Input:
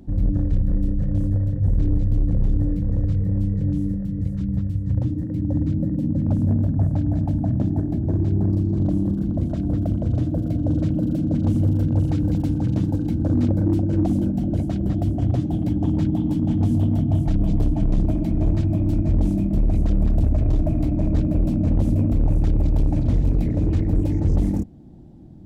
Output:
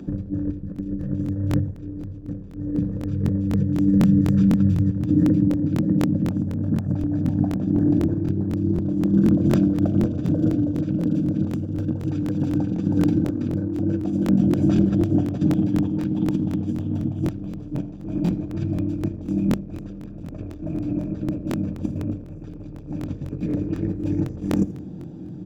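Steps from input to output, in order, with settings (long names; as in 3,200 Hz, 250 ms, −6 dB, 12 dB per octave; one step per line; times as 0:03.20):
comb filter 6.6 ms, depth 30%
compressor whose output falls as the input rises −24 dBFS, ratio −0.5
single-tap delay 82 ms −18 dB
convolution reverb RT60 0.85 s, pre-delay 3 ms, DRR 13.5 dB
regular buffer underruns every 0.25 s, samples 1,024, repeat, from 0:00.74
level −3 dB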